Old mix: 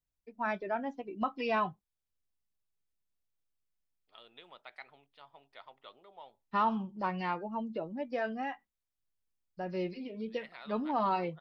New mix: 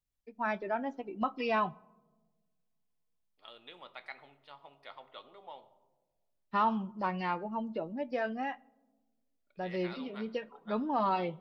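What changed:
second voice: entry -0.70 s; reverb: on, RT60 1.3 s

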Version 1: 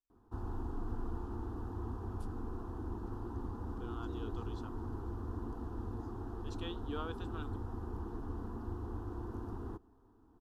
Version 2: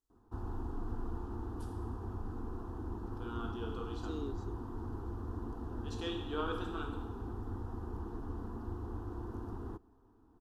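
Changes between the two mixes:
first voice: entry -0.60 s; second voice +10.5 dB; reverb: on, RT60 1.1 s

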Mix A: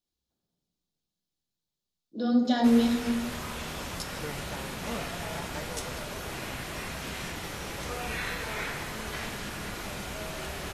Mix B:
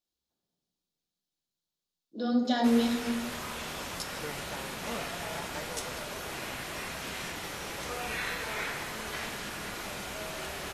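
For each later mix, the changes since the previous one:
master: add bass shelf 200 Hz -8.5 dB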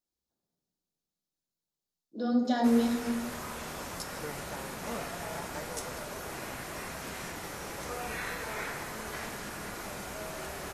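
master: add peaking EQ 3.2 kHz -7.5 dB 1.2 oct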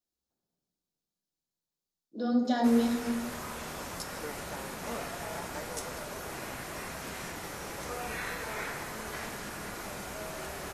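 second voice: add brick-wall FIR high-pass 210 Hz

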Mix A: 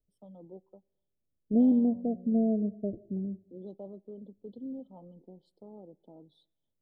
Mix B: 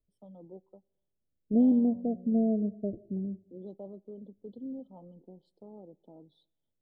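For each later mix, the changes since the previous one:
master: add treble shelf 4.1 kHz -5 dB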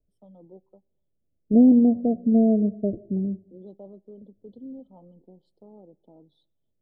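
second voice +8.0 dB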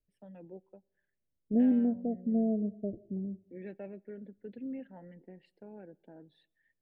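second voice -10.5 dB; master: remove brick-wall FIR band-stop 1.3–3 kHz

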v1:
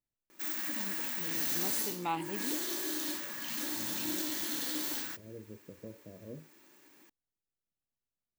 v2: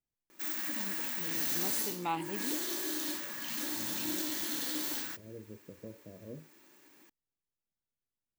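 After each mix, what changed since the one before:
no change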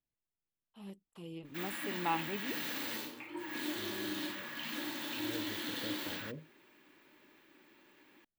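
background: entry +1.15 s; master: add resonant high shelf 4.5 kHz -10 dB, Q 1.5

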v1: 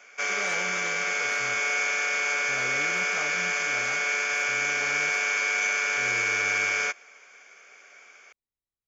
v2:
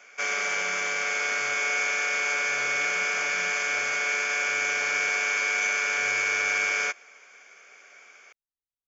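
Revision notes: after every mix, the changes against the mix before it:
speech -9.0 dB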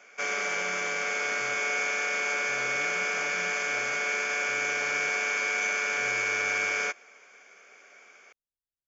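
master: add tilt shelf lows +3.5 dB, about 740 Hz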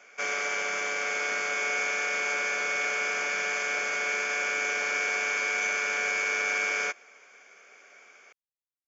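speech -11.0 dB; master: add peaking EQ 61 Hz -13.5 dB 1.4 oct

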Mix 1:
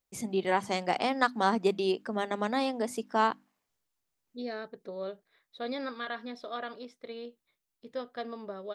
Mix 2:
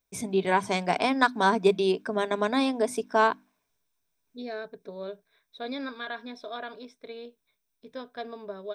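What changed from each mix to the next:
first voice +3.5 dB; master: add rippled EQ curve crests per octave 1.6, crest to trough 8 dB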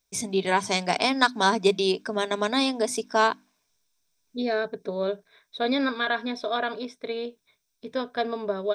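first voice: add peaking EQ 5.5 kHz +10.5 dB 1.6 oct; second voice +10.0 dB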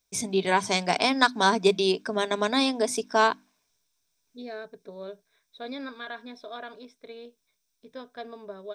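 second voice -12.0 dB

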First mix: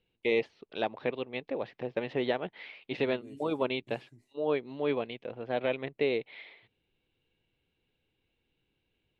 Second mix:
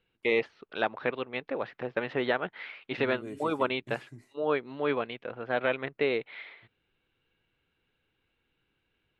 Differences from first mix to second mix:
second voice +9.0 dB; master: add peaking EQ 1.4 kHz +12 dB 0.87 oct

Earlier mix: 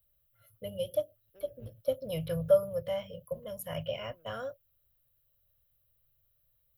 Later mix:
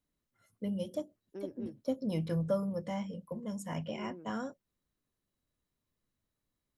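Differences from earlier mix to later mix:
first voice -10.0 dB; master: remove FFT filter 130 Hz 0 dB, 200 Hz -24 dB, 360 Hz -22 dB, 580 Hz 0 dB, 880 Hz -18 dB, 1.3 kHz -7 dB, 2 kHz -11 dB, 3 kHz -2 dB, 7.6 kHz -22 dB, 13 kHz +14 dB

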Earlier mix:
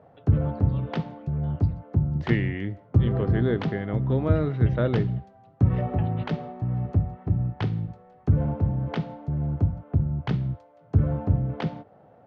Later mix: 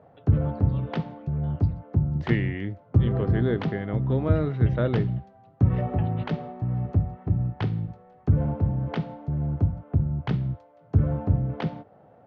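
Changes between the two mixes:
background: add distance through air 51 m; reverb: off

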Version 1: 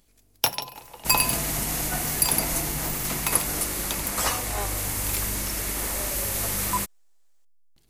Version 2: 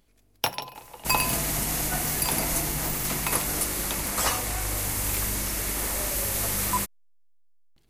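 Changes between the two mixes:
speech: muted; first sound: add tone controls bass -1 dB, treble -7 dB

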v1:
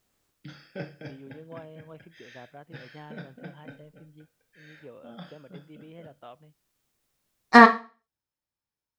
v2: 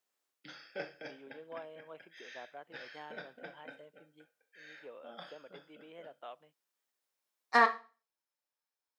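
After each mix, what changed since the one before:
second voice -11.0 dB; master: add high-pass 470 Hz 12 dB/octave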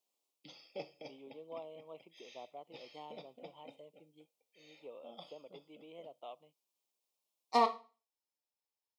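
background: send -7.5 dB; master: add Butterworth band-stop 1.6 kHz, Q 1.2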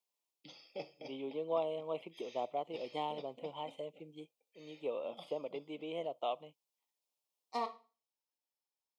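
first voice +12.0 dB; second voice -9.0 dB

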